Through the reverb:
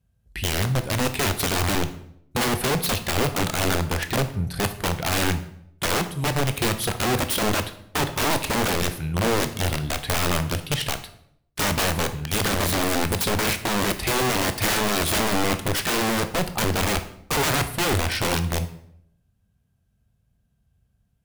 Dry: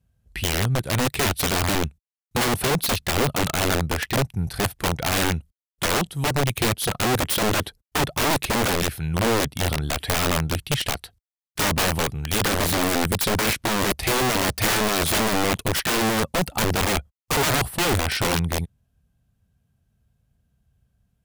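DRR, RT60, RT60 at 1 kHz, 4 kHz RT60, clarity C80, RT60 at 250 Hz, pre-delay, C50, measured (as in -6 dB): 9.0 dB, 0.70 s, 0.65 s, 0.55 s, 16.0 dB, 0.85 s, 17 ms, 12.5 dB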